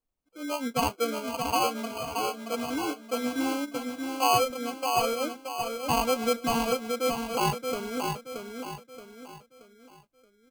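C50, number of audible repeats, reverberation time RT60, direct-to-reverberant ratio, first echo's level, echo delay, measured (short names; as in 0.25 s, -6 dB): none, 4, none, none, -5.0 dB, 0.626 s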